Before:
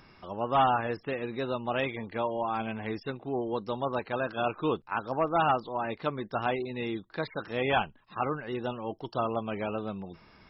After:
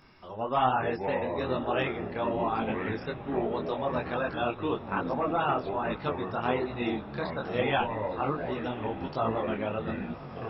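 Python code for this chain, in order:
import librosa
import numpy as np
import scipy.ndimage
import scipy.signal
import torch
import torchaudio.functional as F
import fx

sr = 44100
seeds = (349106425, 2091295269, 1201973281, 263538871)

p1 = fx.level_steps(x, sr, step_db=17)
p2 = x + (p1 * 10.0 ** (-1.0 / 20.0))
p3 = fx.echo_pitch(p2, sr, ms=264, semitones=-6, count=3, db_per_echo=-6.0)
p4 = fx.echo_diffused(p3, sr, ms=1095, feedback_pct=58, wet_db=-15.5)
y = fx.detune_double(p4, sr, cents=41)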